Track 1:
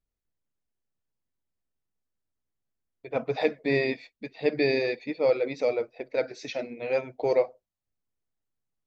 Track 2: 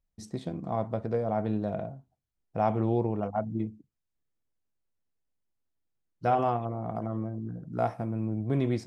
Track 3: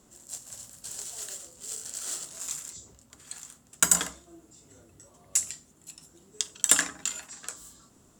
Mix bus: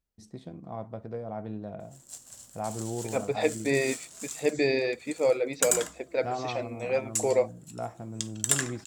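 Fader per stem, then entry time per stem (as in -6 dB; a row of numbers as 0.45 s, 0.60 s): -1.0 dB, -7.5 dB, -4.5 dB; 0.00 s, 0.00 s, 1.80 s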